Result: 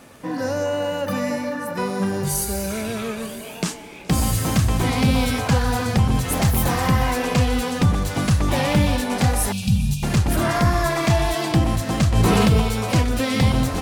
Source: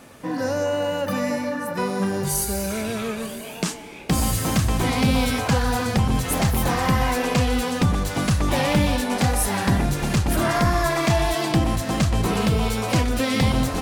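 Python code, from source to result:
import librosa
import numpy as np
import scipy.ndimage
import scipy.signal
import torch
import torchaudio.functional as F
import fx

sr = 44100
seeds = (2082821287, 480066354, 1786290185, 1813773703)

y = fx.dynamic_eq(x, sr, hz=100.0, q=1.1, threshold_db=-32.0, ratio=4.0, max_db=4)
y = fx.dmg_crackle(y, sr, seeds[0], per_s=17.0, level_db=-35.0)
y = fx.high_shelf(y, sr, hz=9500.0, db=7.0, at=(6.42, 6.88))
y = fx.brickwall_bandstop(y, sr, low_hz=240.0, high_hz=2300.0, at=(9.52, 10.03))
y = fx.echo_feedback(y, sr, ms=421, feedback_pct=25, wet_db=-23.0)
y = fx.env_flatten(y, sr, amount_pct=70, at=(12.15, 12.6), fade=0.02)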